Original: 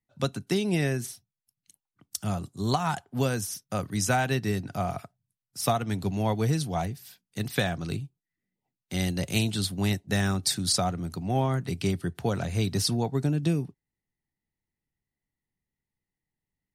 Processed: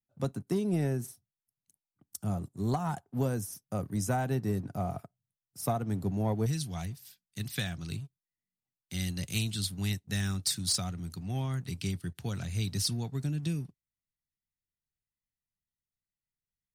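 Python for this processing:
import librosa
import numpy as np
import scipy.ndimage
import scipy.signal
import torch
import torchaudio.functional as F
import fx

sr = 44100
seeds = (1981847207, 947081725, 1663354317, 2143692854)

y = fx.peak_eq(x, sr, hz=fx.steps((0.0, 3100.0), (6.46, 610.0)), db=-14.0, octaves=2.6)
y = fx.leveller(y, sr, passes=1)
y = F.gain(torch.from_numpy(y), -5.5).numpy()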